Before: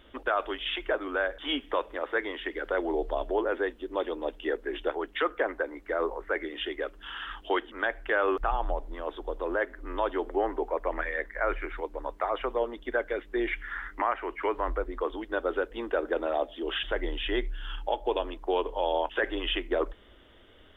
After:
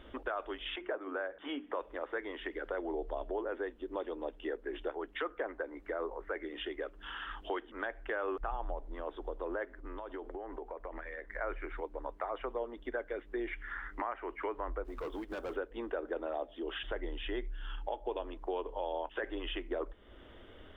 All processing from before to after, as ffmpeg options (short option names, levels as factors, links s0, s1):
-filter_complex "[0:a]asettb=1/sr,asplit=3[s0][s1][s2];[s0]atrim=end=0.764[s3];[s1]atrim=start=0.76:end=1.8,asetpts=PTS-STARTPTS,afade=t=in:d=0.004:c=qsin,afade=t=out:st=1.036:d=0.004:c=qsin,highpass=120,lowpass=2400,bandreject=f=60:t=h:w=6,bandreject=f=120:t=h:w=6,bandreject=f=180:t=h:w=6,bandreject=f=240:t=h:w=6,bandreject=f=300:t=h:w=6,bandreject=f=360:t=h:w=6[s4];[s2]atrim=start=1.796[s5];[s3][s4]acrossfade=d=0.004:c1=hsin:c2=qsin[s6];[s6][s5]acrossfade=d=0.004:c1=qsin:c2=hsin,asettb=1/sr,asplit=3[s7][s8][s9];[s7]atrim=end=9.804[s10];[s8]atrim=start=9.8:end=11.3,asetpts=PTS-STARTPTS,afade=t=in:d=0.004:c=qsin,afade=t=out:st=1.496:d=0.004:c=qsin,agate=range=0.501:threshold=0.01:ratio=16:release=100:detection=peak,acompressor=threshold=0.0141:ratio=6:attack=3.2:release=140:knee=1:detection=peak[s11];[s9]atrim=start=11.296[s12];[s10][s11]acrossfade=d=0.004:c1=hsin:c2=qsin[s13];[s13][s12]acrossfade=d=0.004:c1=qsin:c2=hsin,asettb=1/sr,asplit=3[s14][s15][s16];[s14]atrim=end=14.844[s17];[s15]atrim=start=14.84:end=15.56,asetpts=PTS-STARTPTS,afade=t=in:d=0.004:c=qsin,afade=t=out:st=0.716:d=0.004:c=qsin,volume=44.7,asoftclip=hard,volume=0.0224,acrusher=bits=5:mode=log:mix=0:aa=0.000001[s18];[s16]atrim=start=15.556[s19];[s17][s18]acrossfade=d=0.004:c1=hsin:c2=qsin[s20];[s20][s19]acrossfade=d=0.004:c1=qsin:c2=hsin,highshelf=f=2700:g=-9.5,acompressor=threshold=0.00447:ratio=2,volume=1.5"